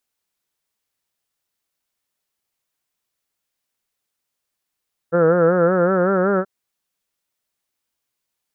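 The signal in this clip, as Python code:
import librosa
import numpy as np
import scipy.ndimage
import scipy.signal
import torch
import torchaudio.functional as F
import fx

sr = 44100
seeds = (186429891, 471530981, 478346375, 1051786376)

y = fx.vowel(sr, seeds[0], length_s=1.33, word='heard', hz=165.0, glide_st=3.0, vibrato_hz=5.3, vibrato_st=0.9)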